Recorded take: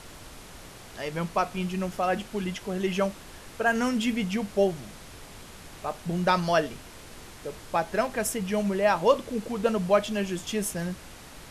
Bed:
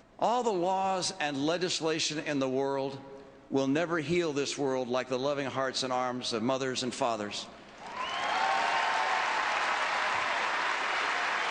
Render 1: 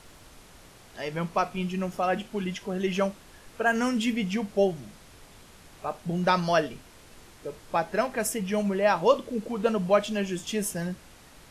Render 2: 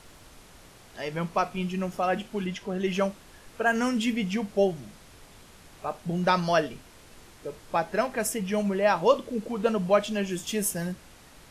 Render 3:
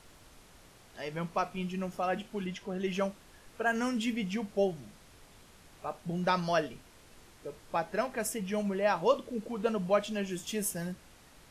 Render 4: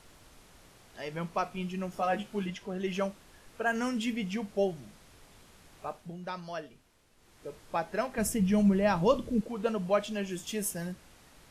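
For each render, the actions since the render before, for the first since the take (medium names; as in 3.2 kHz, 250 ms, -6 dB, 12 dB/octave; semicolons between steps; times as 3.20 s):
noise print and reduce 6 dB
2.46–2.86 s: treble shelf 7.6 kHz -6 dB; 10.30–10.92 s: treble shelf 11 kHz +10 dB
trim -5.5 dB
1.95–2.50 s: doubling 15 ms -3 dB; 5.86–7.48 s: dip -10 dB, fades 0.31 s; 8.18–9.41 s: tone controls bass +15 dB, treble +2 dB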